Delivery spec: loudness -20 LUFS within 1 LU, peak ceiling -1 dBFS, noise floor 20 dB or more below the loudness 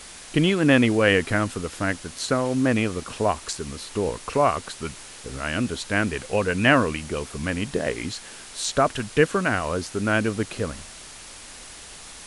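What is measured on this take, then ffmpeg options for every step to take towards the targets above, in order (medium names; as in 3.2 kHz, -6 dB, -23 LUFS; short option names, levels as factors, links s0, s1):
noise floor -42 dBFS; noise floor target -44 dBFS; loudness -24.0 LUFS; peak level -3.0 dBFS; loudness target -20.0 LUFS
-> -af "afftdn=nr=6:nf=-42"
-af "volume=1.58,alimiter=limit=0.891:level=0:latency=1"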